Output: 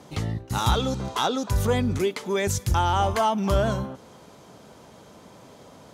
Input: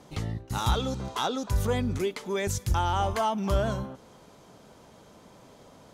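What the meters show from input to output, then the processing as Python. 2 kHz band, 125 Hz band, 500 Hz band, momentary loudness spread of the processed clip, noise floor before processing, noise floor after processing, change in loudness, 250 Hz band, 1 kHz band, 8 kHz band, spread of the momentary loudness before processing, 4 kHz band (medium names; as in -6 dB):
+4.5 dB, +4.0 dB, +4.5 dB, 8 LU, -54 dBFS, -50 dBFS, +4.0 dB, +4.5 dB, +4.5 dB, +4.5 dB, 8 LU, +4.5 dB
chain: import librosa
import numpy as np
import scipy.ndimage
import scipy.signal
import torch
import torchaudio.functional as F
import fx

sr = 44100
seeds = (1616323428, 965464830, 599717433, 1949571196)

y = scipy.signal.sosfilt(scipy.signal.butter(2, 56.0, 'highpass', fs=sr, output='sos'), x)
y = F.gain(torch.from_numpy(y), 4.5).numpy()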